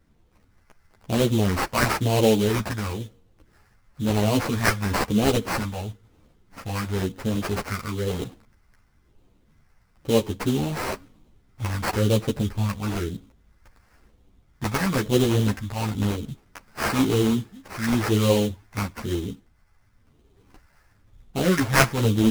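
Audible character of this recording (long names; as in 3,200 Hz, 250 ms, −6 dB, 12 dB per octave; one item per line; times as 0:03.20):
phaser sweep stages 2, 1 Hz, lowest notch 370–1,800 Hz
aliases and images of a low sample rate 3,500 Hz, jitter 20%
a shimmering, thickened sound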